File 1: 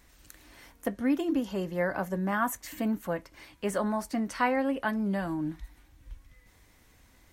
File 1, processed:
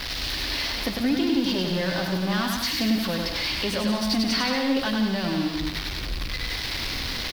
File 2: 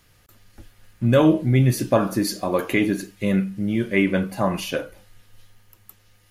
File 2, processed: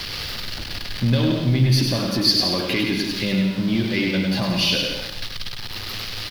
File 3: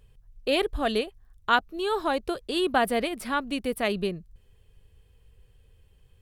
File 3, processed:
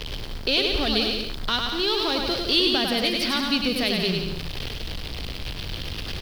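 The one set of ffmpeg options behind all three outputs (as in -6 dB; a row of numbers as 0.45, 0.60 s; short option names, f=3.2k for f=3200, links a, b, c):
-filter_complex "[0:a]aeval=exprs='val(0)+0.5*0.0266*sgn(val(0))':c=same,bandreject=f=50:t=h:w=6,bandreject=f=100:t=h:w=6,bandreject=f=150:t=h:w=6,bandreject=f=200:t=h:w=6,asoftclip=type=tanh:threshold=-10dB,alimiter=limit=-15.5dB:level=0:latency=1:release=231,equalizer=f=3.7k:t=o:w=1.9:g=6.5,acrossover=split=280|3000[a][b][c];[b]acompressor=threshold=-39dB:ratio=2[d];[a][d][c]amix=inputs=3:normalize=0,highshelf=f=5.9k:t=q:w=3:g=-7.5,asplit=2[e][f];[f]aecho=0:1:100|175|231.2|273.4|305.1:0.631|0.398|0.251|0.158|0.1[g];[e][g]amix=inputs=2:normalize=0,acrusher=bits=8:mix=0:aa=0.000001,volume=3.5dB"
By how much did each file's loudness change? +5.5, 0.0, +3.5 LU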